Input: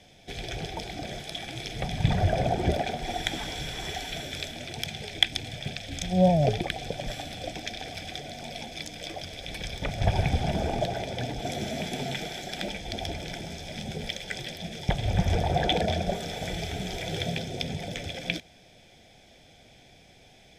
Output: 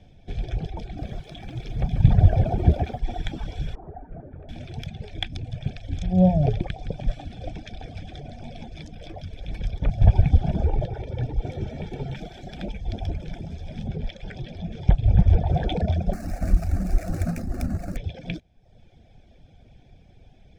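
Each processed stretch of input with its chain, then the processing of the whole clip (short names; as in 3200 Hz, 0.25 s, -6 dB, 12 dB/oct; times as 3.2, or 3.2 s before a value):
0.84–3 high shelf 12000 Hz -3.5 dB + lo-fi delay 0.139 s, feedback 35%, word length 7-bit, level -6 dB
3.75–4.49 LPF 1200 Hz 24 dB/oct + low shelf 200 Hz -8 dB
5.24–8.94 steep low-pass 11000 Hz + split-band echo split 680 Hz, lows 92 ms, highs 0.167 s, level -12 dB
10.65–12.16 high shelf 4300 Hz -7.5 dB + comb 2.2 ms, depth 50%
13.87–15.48 air absorption 66 m + upward compressor, threshold -30 dBFS
16.13–17.97 half-waves squared off + tone controls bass +3 dB, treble +9 dB + fixed phaser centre 660 Hz, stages 8
whole clip: reverb removal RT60 0.77 s; RIAA curve playback; notch 2000 Hz, Q 13; gain -3.5 dB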